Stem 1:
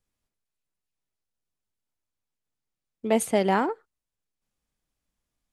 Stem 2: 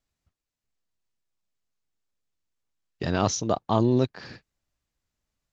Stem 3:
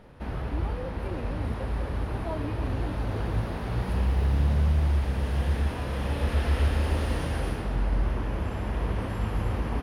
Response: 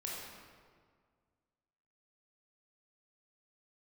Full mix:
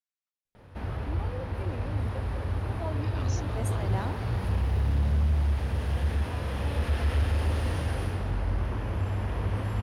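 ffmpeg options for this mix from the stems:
-filter_complex "[0:a]adelay=450,volume=-11.5dB[link_01];[1:a]highpass=1200,volume=-14dB,asplit=2[link_02][link_03];[2:a]equalizer=frequency=93:width=2.8:gain=13.5,asoftclip=type=tanh:threshold=-11.5dB,adelay=550,volume=-1dB[link_04];[link_03]apad=whole_len=263707[link_05];[link_01][link_05]sidechaincompress=threshold=-50dB:ratio=8:attack=16:release=162[link_06];[link_06][link_02][link_04]amix=inputs=3:normalize=0,lowshelf=frequency=260:gain=-4.5"

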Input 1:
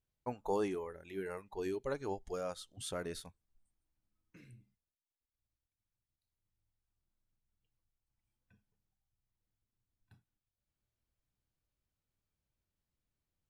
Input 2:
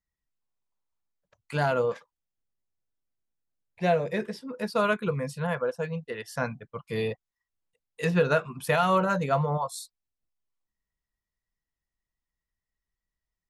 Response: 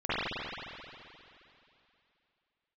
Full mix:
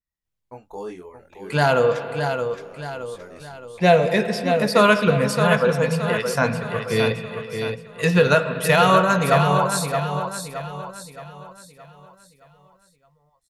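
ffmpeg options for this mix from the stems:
-filter_complex "[0:a]flanger=delay=20:depth=4.1:speed=0.97,adelay=250,volume=3dB,asplit=2[link_01][link_02];[link_02]volume=-8.5dB[link_03];[1:a]dynaudnorm=framelen=160:gausssize=11:maxgain=16dB,adynamicequalizer=threshold=0.0355:dfrequency=2400:dqfactor=0.7:tfrequency=2400:tqfactor=0.7:attack=5:release=100:ratio=0.375:range=3:mode=boostabove:tftype=highshelf,volume=-4dB,asplit=4[link_04][link_05][link_06][link_07];[link_05]volume=-21.5dB[link_08];[link_06]volume=-6.5dB[link_09];[link_07]apad=whole_len=605997[link_10];[link_01][link_10]sidechaincompress=threshold=-34dB:ratio=8:attack=16:release=1140[link_11];[2:a]atrim=start_sample=2205[link_12];[link_08][link_12]afir=irnorm=-1:irlink=0[link_13];[link_03][link_09]amix=inputs=2:normalize=0,aecho=0:1:620|1240|1860|2480|3100|3720:1|0.44|0.194|0.0852|0.0375|0.0165[link_14];[link_11][link_04][link_13][link_14]amix=inputs=4:normalize=0"

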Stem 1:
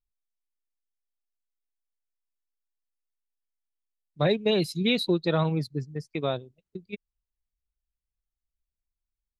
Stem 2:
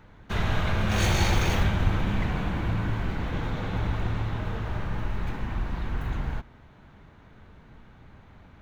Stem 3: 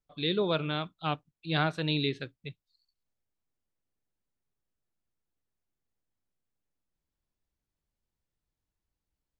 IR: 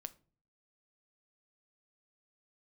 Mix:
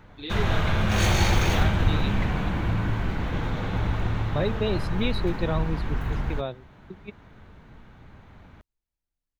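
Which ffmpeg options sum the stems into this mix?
-filter_complex "[0:a]lowpass=frequency=3400:poles=1,adelay=150,volume=-3dB[link_01];[1:a]volume=2dB[link_02];[2:a]asplit=2[link_03][link_04];[link_04]adelay=7.7,afreqshift=0.74[link_05];[link_03][link_05]amix=inputs=2:normalize=1,volume=-3dB[link_06];[link_01][link_02][link_06]amix=inputs=3:normalize=0"

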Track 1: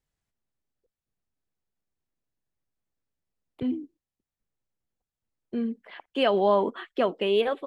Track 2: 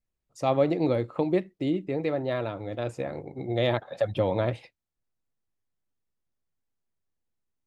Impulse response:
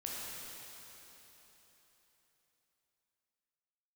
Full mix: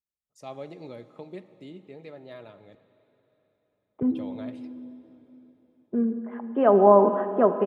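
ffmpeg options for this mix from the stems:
-filter_complex "[0:a]lowpass=frequency=1300:width=0.5412,lowpass=frequency=1300:width=1.3066,adelay=400,volume=2dB,asplit=2[link_01][link_02];[link_02]volume=-7dB[link_03];[1:a]volume=-17dB,asplit=3[link_04][link_05][link_06];[link_04]atrim=end=2.75,asetpts=PTS-STARTPTS,afade=type=out:start_time=2.746:duration=0.004:curve=hsin[link_07];[link_05]atrim=start=2.75:end=4.1,asetpts=PTS-STARTPTS,volume=0[link_08];[link_06]atrim=start=4.1,asetpts=PTS-STARTPTS,afade=type=in:duration=0.004:curve=hsin[link_09];[link_07][link_08][link_09]concat=n=3:v=0:a=1,asplit=3[link_10][link_11][link_12];[link_11]volume=-13dB[link_13];[link_12]apad=whole_len=355490[link_14];[link_01][link_14]sidechaincompress=threshold=-56dB:ratio=8:attack=46:release=1440[link_15];[2:a]atrim=start_sample=2205[link_16];[link_03][link_13]amix=inputs=2:normalize=0[link_17];[link_17][link_16]afir=irnorm=-1:irlink=0[link_18];[link_15][link_10][link_18]amix=inputs=3:normalize=0,highpass=56,highshelf=frequency=3800:gain=8.5,aecho=1:1:4.8:0.34"

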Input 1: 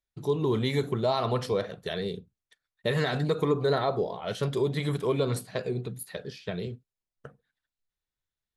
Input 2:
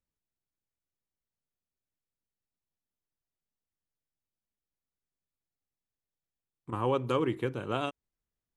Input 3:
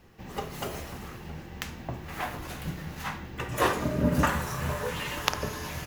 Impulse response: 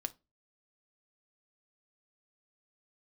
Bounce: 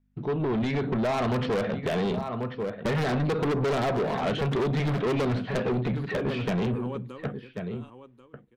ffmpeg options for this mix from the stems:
-filter_complex "[0:a]lowpass=frequency=2800:width=0.5412,lowpass=frequency=2800:width=1.3066,dynaudnorm=framelen=400:gausssize=5:maxgain=13.5dB,aeval=exprs='0.376*(abs(mod(val(0)/0.376+3,4)-2)-1)':channel_layout=same,volume=1dB,asplit=3[link_01][link_02][link_03];[link_02]volume=-8dB[link_04];[link_03]volume=-15dB[link_05];[1:a]aeval=exprs='val(0)+0.001*(sin(2*PI*50*n/s)+sin(2*PI*2*50*n/s)/2+sin(2*PI*3*50*n/s)/3+sin(2*PI*4*50*n/s)/4+sin(2*PI*5*50*n/s)/5)':channel_layout=same,volume=-10.5dB,afade=type=out:start_time=6.96:duration=0.26:silence=0.266073,asplit=3[link_06][link_07][link_08];[link_07]volume=-10.5dB[link_09];[link_08]volume=-11dB[link_10];[3:a]atrim=start_sample=2205[link_11];[link_04][link_09]amix=inputs=2:normalize=0[link_12];[link_12][link_11]afir=irnorm=-1:irlink=0[link_13];[link_05][link_10]amix=inputs=2:normalize=0,aecho=0:1:1088:1[link_14];[link_01][link_06][link_13][link_14]amix=inputs=4:normalize=0,equalizer=frequency=230:width=2.9:gain=8.5,acrossover=split=1000|2800|7200[link_15][link_16][link_17][link_18];[link_15]acompressor=threshold=-18dB:ratio=4[link_19];[link_16]acompressor=threshold=-33dB:ratio=4[link_20];[link_17]acompressor=threshold=-34dB:ratio=4[link_21];[link_18]acompressor=threshold=-51dB:ratio=4[link_22];[link_19][link_20][link_21][link_22]amix=inputs=4:normalize=0,asoftclip=type=tanh:threshold=-23dB"

